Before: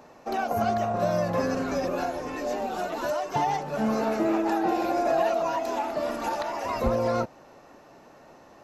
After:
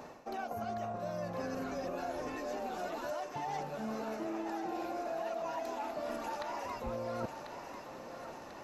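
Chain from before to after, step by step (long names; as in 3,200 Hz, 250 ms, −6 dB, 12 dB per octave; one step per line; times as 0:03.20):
reversed playback
downward compressor 8 to 1, threshold −39 dBFS, peak gain reduction 19 dB
reversed playback
feedback echo with a high-pass in the loop 1,043 ms, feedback 58%, high-pass 840 Hz, level −7 dB
level +2.5 dB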